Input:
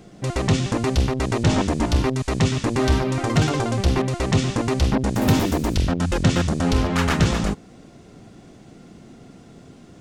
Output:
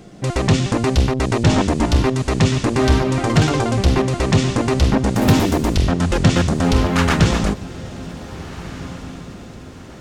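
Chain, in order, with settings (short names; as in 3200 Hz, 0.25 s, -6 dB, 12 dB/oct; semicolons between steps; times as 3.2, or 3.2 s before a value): diffused feedback echo 1.622 s, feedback 42%, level -16 dB; Doppler distortion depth 0.12 ms; gain +4 dB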